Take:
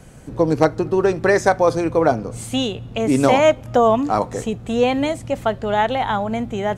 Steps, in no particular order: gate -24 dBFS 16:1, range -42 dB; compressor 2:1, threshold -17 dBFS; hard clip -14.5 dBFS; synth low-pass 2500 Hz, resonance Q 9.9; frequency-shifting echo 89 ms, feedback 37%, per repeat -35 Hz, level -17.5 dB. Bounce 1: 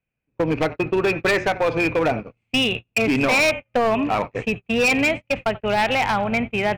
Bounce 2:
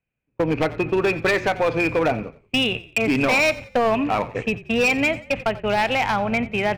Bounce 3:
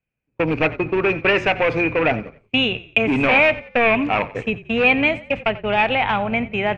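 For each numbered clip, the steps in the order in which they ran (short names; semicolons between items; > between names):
frequency-shifting echo > compressor > synth low-pass > hard clip > gate; synth low-pass > gate > compressor > hard clip > frequency-shifting echo; hard clip > compressor > synth low-pass > gate > frequency-shifting echo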